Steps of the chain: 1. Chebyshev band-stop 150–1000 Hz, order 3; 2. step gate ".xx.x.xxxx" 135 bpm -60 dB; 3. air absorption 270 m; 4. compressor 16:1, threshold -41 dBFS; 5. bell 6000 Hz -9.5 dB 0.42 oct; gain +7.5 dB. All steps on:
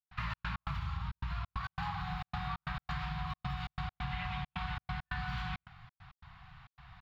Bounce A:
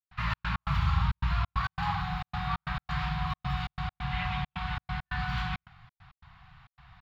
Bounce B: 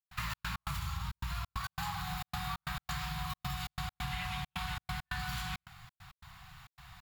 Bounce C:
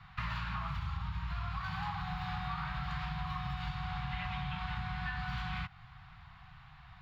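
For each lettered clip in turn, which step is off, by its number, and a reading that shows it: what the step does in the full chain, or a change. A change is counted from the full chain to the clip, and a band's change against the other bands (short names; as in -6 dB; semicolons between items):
4, mean gain reduction 5.5 dB; 3, 4 kHz band +5.5 dB; 2, momentary loudness spread change -1 LU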